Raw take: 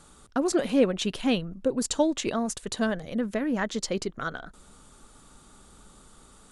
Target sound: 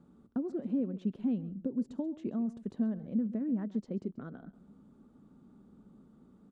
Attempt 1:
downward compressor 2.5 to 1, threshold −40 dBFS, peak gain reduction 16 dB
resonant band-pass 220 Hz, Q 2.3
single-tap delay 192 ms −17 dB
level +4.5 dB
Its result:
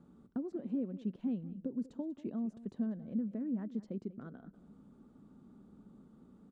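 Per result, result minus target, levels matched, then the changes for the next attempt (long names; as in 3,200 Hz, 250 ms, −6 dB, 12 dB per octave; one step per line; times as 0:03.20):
echo 58 ms late; downward compressor: peak gain reduction +4 dB
change: single-tap delay 134 ms −17 dB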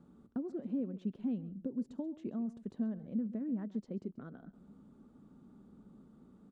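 downward compressor: peak gain reduction +4 dB
change: downward compressor 2.5 to 1, threshold −33 dBFS, peak gain reduction 11.5 dB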